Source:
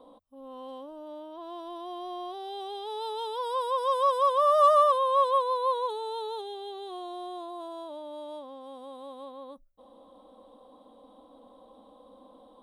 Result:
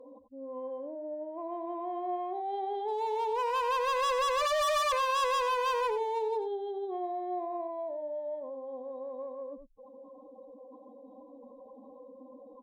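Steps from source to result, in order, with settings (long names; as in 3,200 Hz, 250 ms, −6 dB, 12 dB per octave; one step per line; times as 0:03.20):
expanding power law on the bin magnitudes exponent 2.5
hard clipping −31.5 dBFS, distortion −3 dB
harmonic generator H 3 −31 dB, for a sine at −31.5 dBFS
parametric band 67 Hz +8 dB 1.7 octaves
single-tap delay 89 ms −9.5 dB
level +3.5 dB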